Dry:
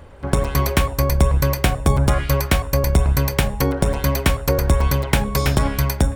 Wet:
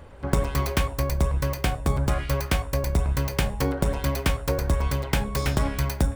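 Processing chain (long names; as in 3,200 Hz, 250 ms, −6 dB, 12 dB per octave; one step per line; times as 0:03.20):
phase distortion by the signal itself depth 0.14 ms
tuned comb filter 57 Hz, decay 0.2 s, mix 50%
speech leveller
level −3.5 dB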